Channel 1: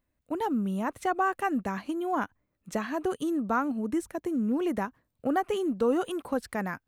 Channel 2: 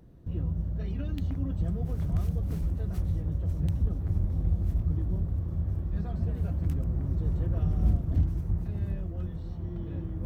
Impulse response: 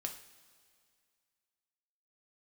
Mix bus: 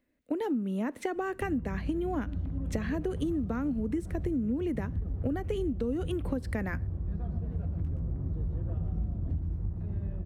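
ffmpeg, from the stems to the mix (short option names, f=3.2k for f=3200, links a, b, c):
-filter_complex "[0:a]equalizer=f=125:t=o:w=1:g=-4,equalizer=f=250:t=o:w=1:g=12,equalizer=f=500:t=o:w=1:g=8,equalizer=f=1k:t=o:w=1:g=-3,equalizer=f=2k:t=o:w=1:g=9,equalizer=f=4k:t=o:w=1:g=3,acrossover=split=360|3000[a][b][c];[b]acompressor=threshold=-25dB:ratio=6[d];[a][d][c]amix=inputs=3:normalize=0,volume=-4.5dB,asplit=2[e][f];[f]volume=-14.5dB[g];[1:a]lowpass=f=1.2k:p=1,adelay=1150,volume=-2dB,asplit=2[h][i];[i]volume=-8.5dB[j];[2:a]atrim=start_sample=2205[k];[g][k]afir=irnorm=-1:irlink=0[l];[j]aecho=0:1:120:1[m];[e][h][l][m]amix=inputs=4:normalize=0,acompressor=threshold=-28dB:ratio=6"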